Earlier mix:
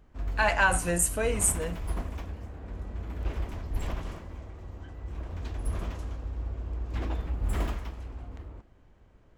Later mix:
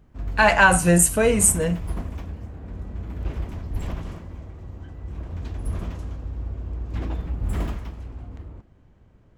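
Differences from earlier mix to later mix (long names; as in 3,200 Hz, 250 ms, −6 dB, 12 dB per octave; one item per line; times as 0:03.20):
speech +8.0 dB
master: add parametric band 140 Hz +8 dB 2.1 octaves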